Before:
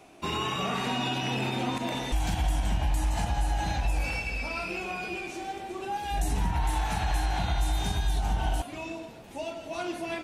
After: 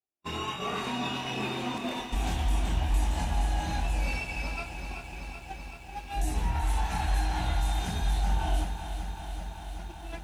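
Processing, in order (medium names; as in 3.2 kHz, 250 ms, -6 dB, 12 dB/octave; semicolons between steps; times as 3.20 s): chorus voices 6, 0.23 Hz, delay 26 ms, depth 2.9 ms; gate -34 dBFS, range -45 dB; bit-crushed delay 381 ms, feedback 80%, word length 10-bit, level -9.5 dB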